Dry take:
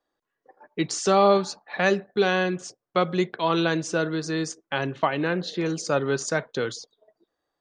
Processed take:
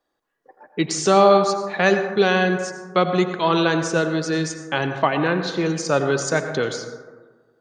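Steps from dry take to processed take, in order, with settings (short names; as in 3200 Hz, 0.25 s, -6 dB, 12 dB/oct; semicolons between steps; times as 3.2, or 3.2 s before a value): plate-style reverb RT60 1.4 s, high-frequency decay 0.3×, pre-delay 75 ms, DRR 7.5 dB; gain +4 dB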